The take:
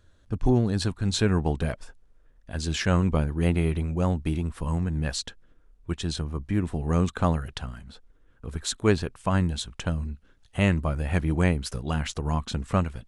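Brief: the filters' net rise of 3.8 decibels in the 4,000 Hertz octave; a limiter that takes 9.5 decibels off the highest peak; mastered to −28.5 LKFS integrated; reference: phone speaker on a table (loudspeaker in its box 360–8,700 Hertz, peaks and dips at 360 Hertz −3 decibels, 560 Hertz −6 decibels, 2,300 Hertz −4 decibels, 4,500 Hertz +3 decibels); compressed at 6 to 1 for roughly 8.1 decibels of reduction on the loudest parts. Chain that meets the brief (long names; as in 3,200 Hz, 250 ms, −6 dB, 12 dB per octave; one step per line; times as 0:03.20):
parametric band 4,000 Hz +3 dB
downward compressor 6 to 1, threshold −25 dBFS
brickwall limiter −24 dBFS
loudspeaker in its box 360–8,700 Hz, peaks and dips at 360 Hz −3 dB, 560 Hz −6 dB, 2,300 Hz −4 dB, 4,500 Hz +3 dB
level +12 dB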